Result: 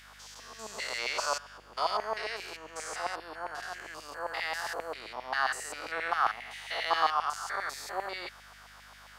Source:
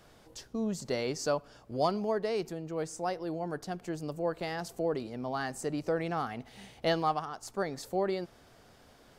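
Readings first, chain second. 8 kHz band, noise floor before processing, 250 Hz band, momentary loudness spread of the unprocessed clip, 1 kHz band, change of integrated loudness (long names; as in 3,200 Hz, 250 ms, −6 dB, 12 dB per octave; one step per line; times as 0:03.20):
+3.5 dB, −59 dBFS, −18.0 dB, 8 LU, +4.0 dB, +0.5 dB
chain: spectrum averaged block by block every 200 ms
auto-filter high-pass saw down 7.5 Hz 910–2,200 Hz
mains hum 50 Hz, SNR 27 dB
level +8.5 dB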